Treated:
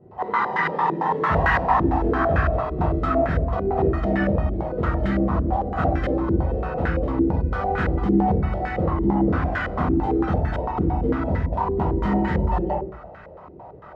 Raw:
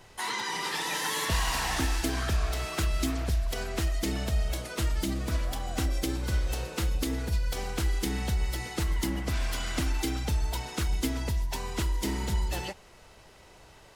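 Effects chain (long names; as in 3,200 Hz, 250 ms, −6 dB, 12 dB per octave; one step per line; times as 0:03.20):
high-pass filter 81 Hz 12 dB per octave
convolution reverb RT60 0.55 s, pre-delay 8 ms, DRR −5 dB
low-pass on a step sequencer 8.9 Hz 360–1,600 Hz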